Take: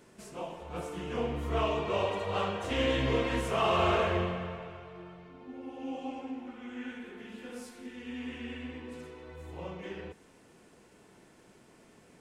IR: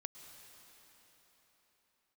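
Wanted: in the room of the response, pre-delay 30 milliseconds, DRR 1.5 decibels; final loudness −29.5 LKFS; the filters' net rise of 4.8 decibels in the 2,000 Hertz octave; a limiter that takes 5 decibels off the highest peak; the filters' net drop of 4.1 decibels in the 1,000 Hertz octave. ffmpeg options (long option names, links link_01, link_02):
-filter_complex "[0:a]equalizer=frequency=1000:width_type=o:gain=-7.5,equalizer=frequency=2000:width_type=o:gain=8,alimiter=limit=-21dB:level=0:latency=1,asplit=2[link_01][link_02];[1:a]atrim=start_sample=2205,adelay=30[link_03];[link_02][link_03]afir=irnorm=-1:irlink=0,volume=2.5dB[link_04];[link_01][link_04]amix=inputs=2:normalize=0,volume=3dB"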